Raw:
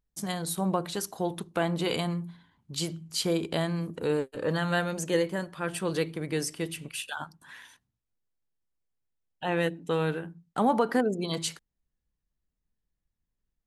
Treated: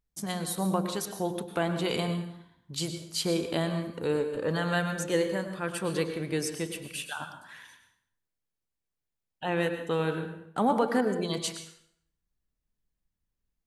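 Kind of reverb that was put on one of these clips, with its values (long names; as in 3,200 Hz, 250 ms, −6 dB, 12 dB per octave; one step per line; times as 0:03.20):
dense smooth reverb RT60 0.66 s, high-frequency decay 0.85×, pre-delay 90 ms, DRR 7.5 dB
level −1 dB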